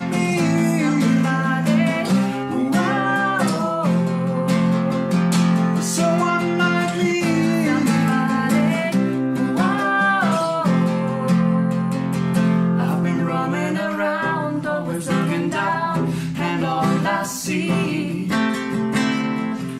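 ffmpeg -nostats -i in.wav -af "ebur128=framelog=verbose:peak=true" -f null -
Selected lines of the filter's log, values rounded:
Integrated loudness:
  I:         -19.5 LUFS
  Threshold: -29.5 LUFS
Loudness range:
  LRA:         2.8 LU
  Threshold: -39.5 LUFS
  LRA low:   -21.3 LUFS
  LRA high:  -18.5 LUFS
True peak:
  Peak:       -7.5 dBFS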